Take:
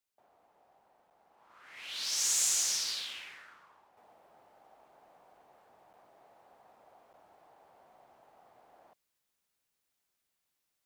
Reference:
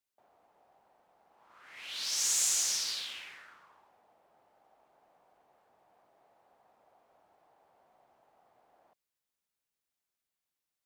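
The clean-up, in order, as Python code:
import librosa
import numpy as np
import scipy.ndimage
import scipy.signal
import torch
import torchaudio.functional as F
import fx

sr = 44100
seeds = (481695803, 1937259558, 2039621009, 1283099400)

y = fx.fix_interpolate(x, sr, at_s=(1.1, 5.93, 7.13), length_ms=8.9)
y = fx.gain(y, sr, db=fx.steps((0.0, 0.0), (3.97, -6.0)))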